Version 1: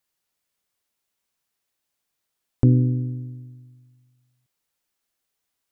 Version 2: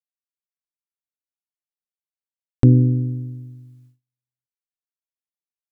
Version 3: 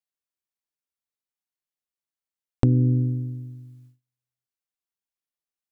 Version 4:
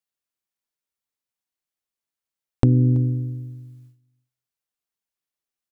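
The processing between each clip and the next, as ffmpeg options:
-af "agate=range=0.0251:threshold=0.00178:ratio=16:detection=peak,volume=1.58"
-af "acompressor=threshold=0.178:ratio=6"
-af "aecho=1:1:330:0.0708,volume=1.33"

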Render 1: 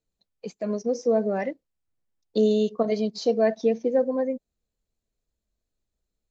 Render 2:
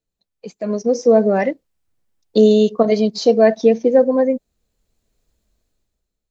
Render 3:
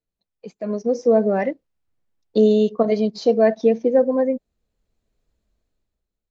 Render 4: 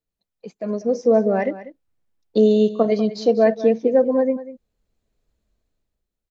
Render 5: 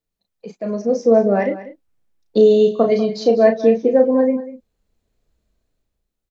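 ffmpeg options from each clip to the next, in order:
-af "dynaudnorm=f=130:g=11:m=5.62"
-af "highshelf=f=5300:g=-12,volume=0.668"
-af "aecho=1:1:193:0.178"
-filter_complex "[0:a]asplit=2[s0][s1];[s1]adelay=35,volume=0.501[s2];[s0][s2]amix=inputs=2:normalize=0,volume=1.26"

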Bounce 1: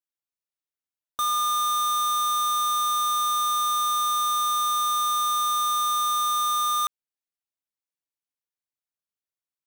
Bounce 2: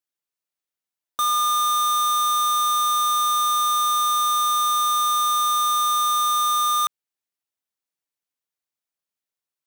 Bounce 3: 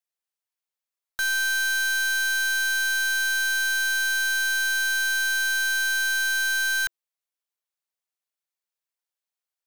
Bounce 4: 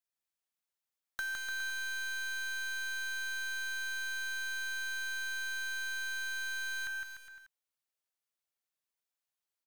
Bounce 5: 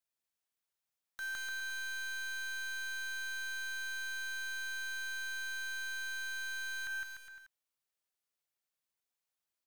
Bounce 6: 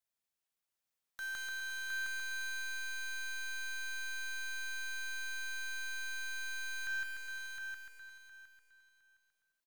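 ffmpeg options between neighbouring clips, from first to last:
-af "lowshelf=f=98:g=-8,volume=1.5"
-af "afreqshift=350,aeval=exprs='clip(val(0),-1,0.0708)':c=same,volume=0.794"
-filter_complex "[0:a]acrossover=split=1100|2400[s0][s1][s2];[s0]acompressor=threshold=0.00501:ratio=4[s3];[s1]acompressor=threshold=0.0178:ratio=4[s4];[s2]acompressor=threshold=0.00501:ratio=4[s5];[s3][s4][s5]amix=inputs=3:normalize=0,aecho=1:1:160|296|411.6|509.9|593.4:0.631|0.398|0.251|0.158|0.1,volume=0.631"
-af "alimiter=level_in=2.66:limit=0.0631:level=0:latency=1,volume=0.376"
-af "aecho=1:1:712|1424|2136:0.631|0.145|0.0334,volume=0.891"

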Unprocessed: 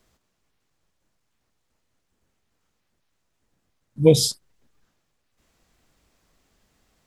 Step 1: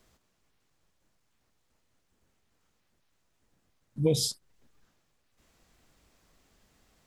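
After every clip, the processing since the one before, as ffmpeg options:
-af "alimiter=limit=0.531:level=0:latency=1,acompressor=threshold=0.0141:ratio=1.5"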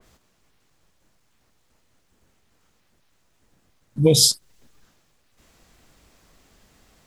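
-af "adynamicequalizer=threshold=0.00316:dfrequency=2800:dqfactor=0.7:tfrequency=2800:tqfactor=0.7:attack=5:release=100:ratio=0.375:range=3:mode=boostabove:tftype=highshelf,volume=2.82"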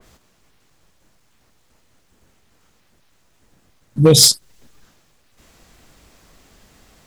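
-af "asoftclip=type=hard:threshold=0.335,volume=2"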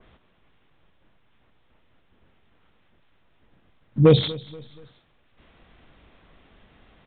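-af "aecho=1:1:239|478|717:0.1|0.042|0.0176,aresample=8000,aresample=44100,volume=0.708"

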